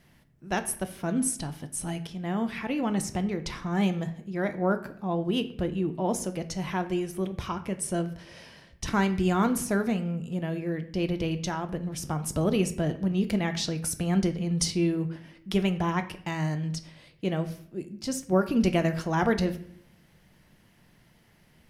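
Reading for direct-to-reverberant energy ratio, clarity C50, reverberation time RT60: 8.0 dB, 14.0 dB, 0.60 s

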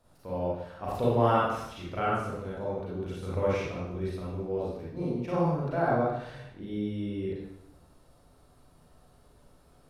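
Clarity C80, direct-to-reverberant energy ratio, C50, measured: 2.0 dB, -7.5 dB, -3.0 dB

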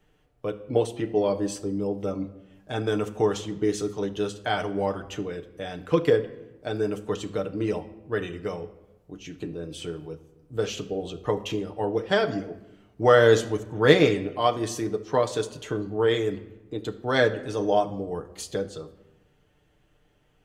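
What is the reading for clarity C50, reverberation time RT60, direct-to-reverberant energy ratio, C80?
14.0 dB, 0.95 s, 5.0 dB, 16.5 dB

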